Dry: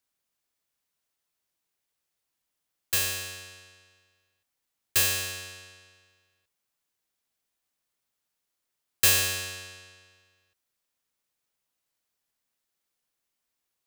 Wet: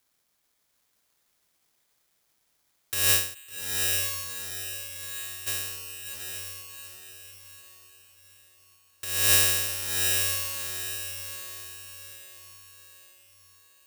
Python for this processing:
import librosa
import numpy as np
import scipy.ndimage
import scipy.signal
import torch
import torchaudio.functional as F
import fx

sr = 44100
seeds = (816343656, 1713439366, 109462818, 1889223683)

y = fx.over_compress(x, sr, threshold_db=-31.0, ratio=-1.0)
y = fx.bandpass_q(y, sr, hz=7000.0, q=2.0, at=(3.33, 5.46), fade=0.02)
y = fx.echo_diffused(y, sr, ms=749, feedback_pct=42, wet_db=-3.5)
y = (np.kron(scipy.signal.resample_poly(y, 1, 8), np.eye(8)[0]) * 8)[:len(y)]
y = fx.end_taper(y, sr, db_per_s=120.0)
y = y * librosa.db_to_amplitude(5.0)